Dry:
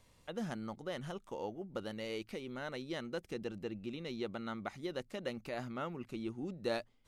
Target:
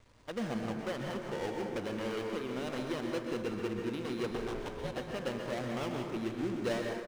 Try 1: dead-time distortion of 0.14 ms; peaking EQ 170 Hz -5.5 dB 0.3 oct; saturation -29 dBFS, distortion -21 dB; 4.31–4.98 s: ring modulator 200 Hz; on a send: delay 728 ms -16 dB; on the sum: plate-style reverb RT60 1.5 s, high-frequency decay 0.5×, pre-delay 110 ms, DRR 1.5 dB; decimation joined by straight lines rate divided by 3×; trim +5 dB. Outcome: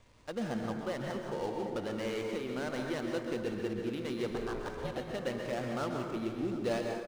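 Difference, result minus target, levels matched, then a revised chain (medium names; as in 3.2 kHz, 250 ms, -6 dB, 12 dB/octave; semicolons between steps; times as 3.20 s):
dead-time distortion: distortion -6 dB
dead-time distortion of 0.3 ms; peaking EQ 170 Hz -5.5 dB 0.3 oct; saturation -29 dBFS, distortion -21 dB; 4.31–4.98 s: ring modulator 200 Hz; on a send: delay 728 ms -16 dB; on the sum: plate-style reverb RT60 1.5 s, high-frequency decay 0.5×, pre-delay 110 ms, DRR 1.5 dB; decimation joined by straight lines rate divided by 3×; trim +5 dB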